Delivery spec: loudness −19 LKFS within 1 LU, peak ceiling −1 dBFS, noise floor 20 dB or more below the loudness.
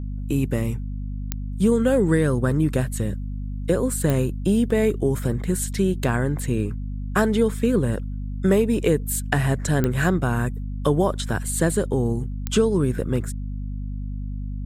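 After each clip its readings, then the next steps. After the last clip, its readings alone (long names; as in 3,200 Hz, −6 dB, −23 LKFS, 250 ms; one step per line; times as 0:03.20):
number of clicks 4; mains hum 50 Hz; hum harmonics up to 250 Hz; level of the hum −26 dBFS; integrated loudness −23.0 LKFS; sample peak −5.5 dBFS; target loudness −19.0 LKFS
→ click removal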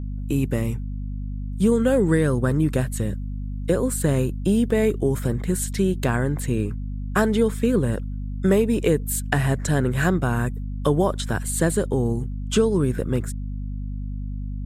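number of clicks 0; mains hum 50 Hz; hum harmonics up to 250 Hz; level of the hum −26 dBFS
→ mains-hum notches 50/100/150/200/250 Hz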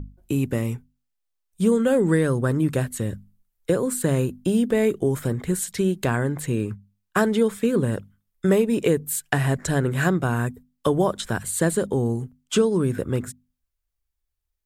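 mains hum none found; integrated loudness −23.5 LKFS; sample peak −7.5 dBFS; target loudness −19.0 LKFS
→ level +4.5 dB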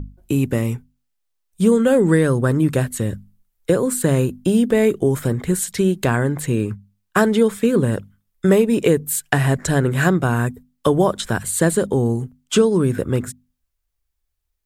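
integrated loudness −19.0 LKFS; sample peak −3.0 dBFS; background noise floor −74 dBFS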